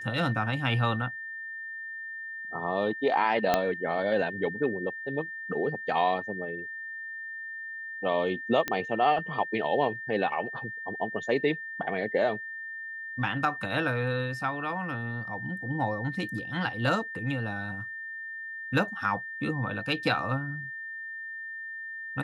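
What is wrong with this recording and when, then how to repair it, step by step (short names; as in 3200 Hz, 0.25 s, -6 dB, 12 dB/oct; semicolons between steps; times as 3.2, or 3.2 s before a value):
tone 1800 Hz -36 dBFS
3.54 pop -9 dBFS
8.68 pop -13 dBFS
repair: de-click; notch 1800 Hz, Q 30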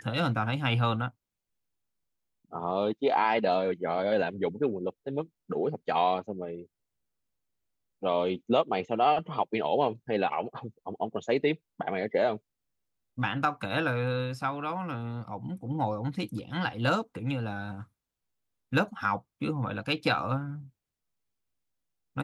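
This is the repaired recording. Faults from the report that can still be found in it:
3.54 pop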